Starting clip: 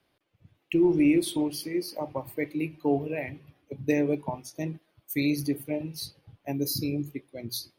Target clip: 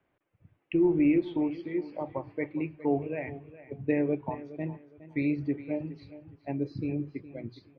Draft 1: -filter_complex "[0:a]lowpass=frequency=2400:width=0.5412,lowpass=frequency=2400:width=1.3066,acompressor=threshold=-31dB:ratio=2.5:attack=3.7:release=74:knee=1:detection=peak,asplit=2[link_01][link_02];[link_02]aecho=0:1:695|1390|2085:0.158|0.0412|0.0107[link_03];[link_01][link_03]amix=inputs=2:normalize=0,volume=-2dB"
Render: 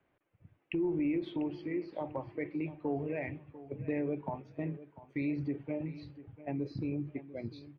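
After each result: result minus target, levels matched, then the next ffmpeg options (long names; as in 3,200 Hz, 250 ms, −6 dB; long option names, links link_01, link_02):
echo 281 ms late; downward compressor: peak gain reduction +9.5 dB
-filter_complex "[0:a]lowpass=frequency=2400:width=0.5412,lowpass=frequency=2400:width=1.3066,acompressor=threshold=-31dB:ratio=2.5:attack=3.7:release=74:knee=1:detection=peak,asplit=2[link_01][link_02];[link_02]aecho=0:1:414|828|1242:0.158|0.0412|0.0107[link_03];[link_01][link_03]amix=inputs=2:normalize=0,volume=-2dB"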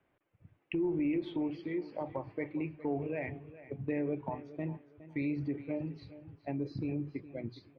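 downward compressor: peak gain reduction +9.5 dB
-filter_complex "[0:a]lowpass=frequency=2400:width=0.5412,lowpass=frequency=2400:width=1.3066,asplit=2[link_01][link_02];[link_02]aecho=0:1:414|828|1242:0.158|0.0412|0.0107[link_03];[link_01][link_03]amix=inputs=2:normalize=0,volume=-2dB"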